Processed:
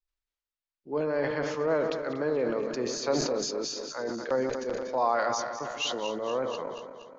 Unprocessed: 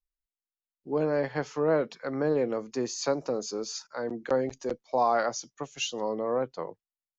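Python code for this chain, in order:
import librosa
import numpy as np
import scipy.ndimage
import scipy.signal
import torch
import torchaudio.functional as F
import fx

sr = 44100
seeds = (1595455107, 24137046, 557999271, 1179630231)

y = fx.reverse_delay_fb(x, sr, ms=119, feedback_pct=76, wet_db=-10)
y = scipy.signal.sosfilt(scipy.signal.butter(2, 5200.0, 'lowpass', fs=sr, output='sos'), y)
y = fx.peak_eq(y, sr, hz=150.0, db=-6.0, octaves=2.9)
y = fx.notch(y, sr, hz=760.0, q=15.0)
y = fx.sustainer(y, sr, db_per_s=36.0)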